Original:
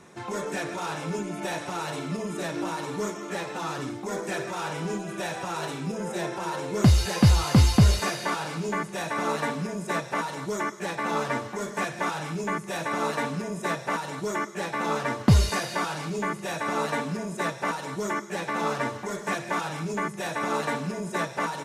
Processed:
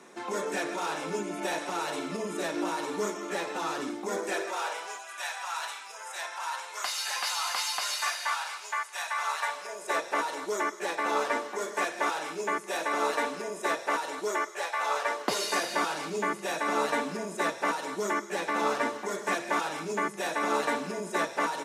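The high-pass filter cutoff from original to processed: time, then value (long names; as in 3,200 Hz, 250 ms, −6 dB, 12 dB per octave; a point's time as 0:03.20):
high-pass filter 24 dB per octave
0:04.16 230 Hz
0:05.07 870 Hz
0:09.37 870 Hz
0:10.09 310 Hz
0:14.27 310 Hz
0:14.76 640 Hz
0:15.71 240 Hz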